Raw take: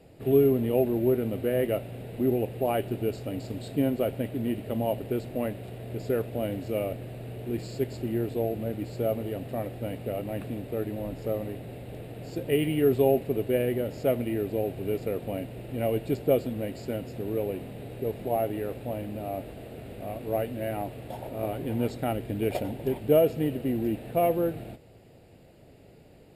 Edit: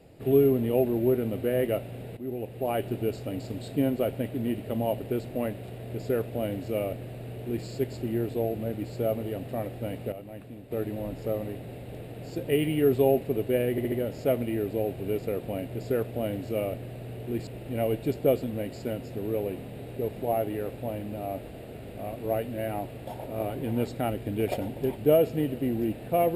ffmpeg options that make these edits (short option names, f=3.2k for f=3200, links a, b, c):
-filter_complex "[0:a]asplit=9[a][b][c][d][e][f][g][h][i];[a]atrim=end=2.17,asetpts=PTS-STARTPTS,afade=t=out:st=2.166:d=0.004:c=hsin:silence=0.199526[j];[b]atrim=start=2.17:end=10.122,asetpts=PTS-STARTPTS,afade=t=in:d=0.7:silence=0.199526[k];[c]atrim=start=10.118:end=10.712,asetpts=PTS-STARTPTS,volume=-9dB[l];[d]atrim=start=10.708:end=13.782[m];[e]atrim=start=13.708:end=13.782[n];[f]atrim=start=13.708:end=13.782[o];[g]atrim=start=13.708:end=15.502[p];[h]atrim=start=5.898:end=7.662[q];[i]atrim=start=15.498[r];[j][k]concat=n=2:v=0:a=1[s];[s][l]acrossfade=d=0.004:c1=hsin:c2=hsin[t];[t][m]acrossfade=d=0.004:c1=hsin:c2=hsin[u];[u][n]acrossfade=d=0.004:c1=hsin:c2=hsin[v];[v][o]acrossfade=d=0.004:c1=hsin:c2=hsin[w];[w][p]acrossfade=d=0.004:c1=hsin:c2=hsin[x];[x][q]acrossfade=d=0.004:c1=hsin:c2=hsin[y];[y][r]acrossfade=d=0.004:c1=hsin:c2=hsin"